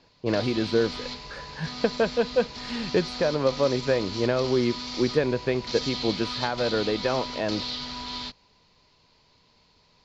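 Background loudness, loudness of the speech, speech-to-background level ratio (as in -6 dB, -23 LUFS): -33.5 LUFS, -26.5 LUFS, 7.0 dB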